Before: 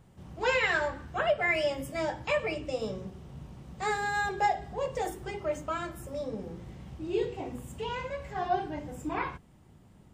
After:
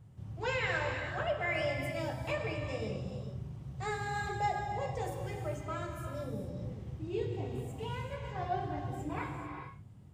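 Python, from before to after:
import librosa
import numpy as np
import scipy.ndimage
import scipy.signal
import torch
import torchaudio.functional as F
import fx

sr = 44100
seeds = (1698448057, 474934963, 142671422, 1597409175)

y = fx.peak_eq(x, sr, hz=110.0, db=15.0, octaves=1.0)
y = fx.rev_gated(y, sr, seeds[0], gate_ms=470, shape='flat', drr_db=3.0)
y = y * librosa.db_to_amplitude(-7.5)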